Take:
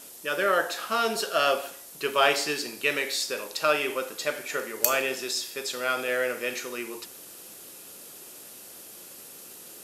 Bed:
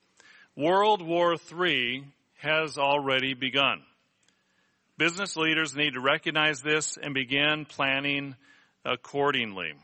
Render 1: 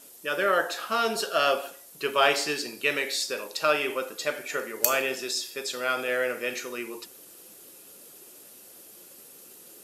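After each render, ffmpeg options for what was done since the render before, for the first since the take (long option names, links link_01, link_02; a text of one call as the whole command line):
ffmpeg -i in.wav -af "afftdn=noise_reduction=6:noise_floor=-46" out.wav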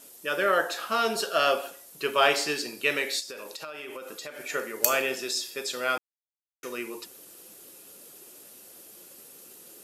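ffmpeg -i in.wav -filter_complex "[0:a]asplit=3[link_01][link_02][link_03];[link_01]afade=type=out:start_time=3.19:duration=0.02[link_04];[link_02]acompressor=threshold=-35dB:ratio=10:attack=3.2:release=140:knee=1:detection=peak,afade=type=in:start_time=3.19:duration=0.02,afade=type=out:start_time=4.39:duration=0.02[link_05];[link_03]afade=type=in:start_time=4.39:duration=0.02[link_06];[link_04][link_05][link_06]amix=inputs=3:normalize=0,asplit=3[link_07][link_08][link_09];[link_07]atrim=end=5.98,asetpts=PTS-STARTPTS,afade=type=out:start_time=5.976:duration=0.004:curve=hsin[link_10];[link_08]atrim=start=5.98:end=6.63,asetpts=PTS-STARTPTS,volume=0[link_11];[link_09]atrim=start=6.63,asetpts=PTS-STARTPTS,afade=type=in:duration=0.004:curve=hsin[link_12];[link_10][link_11][link_12]concat=n=3:v=0:a=1" out.wav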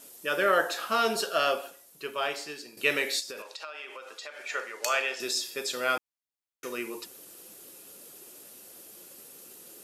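ffmpeg -i in.wav -filter_complex "[0:a]asettb=1/sr,asplit=3[link_01][link_02][link_03];[link_01]atrim=end=3.424[link_04];[link_02]atrim=start=3.42:end=5.2,asetpts=PTS-STARTPTS,afade=type=in:duration=0.004:curve=qsin,afade=type=out:start_time=1.776:duration=0.004:curve=qsin,highpass=660,lowpass=5900[link_05];[link_03]atrim=start=5.196[link_06];[link_04][link_05]acrossfade=duration=0.004:curve1=hsin:curve2=qsin[link_07];[link_07][link_06]acrossfade=duration=0.004:curve1=qsin:curve2=hsin,asplit=2[link_08][link_09];[link_08]atrim=end=2.77,asetpts=PTS-STARTPTS,afade=type=out:start_time=1.12:duration=1.65:curve=qua:silence=0.266073[link_10];[link_09]atrim=start=2.77,asetpts=PTS-STARTPTS,afade=type=in:duration=0.004:curve=hsin:silence=0.266073[link_11];[link_10][link_11]concat=n=2:v=0:a=1" out.wav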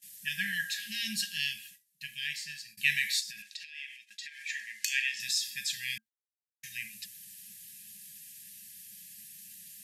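ffmpeg -i in.wav -af "afftfilt=real='re*(1-between(b*sr/4096,220,1600))':imag='im*(1-between(b*sr/4096,220,1600))':win_size=4096:overlap=0.75,agate=range=-20dB:threshold=-52dB:ratio=16:detection=peak" out.wav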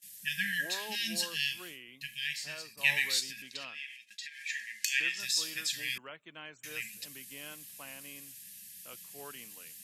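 ffmpeg -i in.wav -i bed.wav -filter_complex "[1:a]volume=-23dB[link_01];[0:a][link_01]amix=inputs=2:normalize=0" out.wav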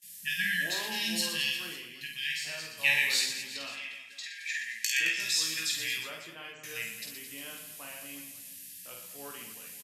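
ffmpeg -i in.wav -filter_complex "[0:a]asplit=2[link_01][link_02];[link_02]adelay=18,volume=-6.5dB[link_03];[link_01][link_03]amix=inputs=2:normalize=0,aecho=1:1:50|120|218|355.2|547.3:0.631|0.398|0.251|0.158|0.1" out.wav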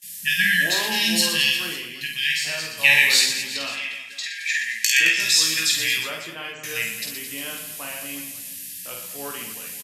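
ffmpeg -i in.wav -af "volume=11dB,alimiter=limit=-2dB:level=0:latency=1" out.wav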